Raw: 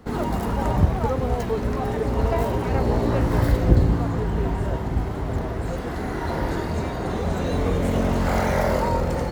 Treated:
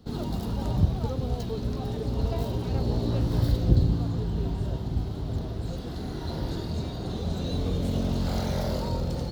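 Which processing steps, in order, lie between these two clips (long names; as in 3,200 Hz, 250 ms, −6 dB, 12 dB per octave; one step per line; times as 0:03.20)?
octave-band graphic EQ 125/500/1,000/2,000/4,000/8,000 Hz +4/−3/−6/−12/+11/−4 dB
level −5.5 dB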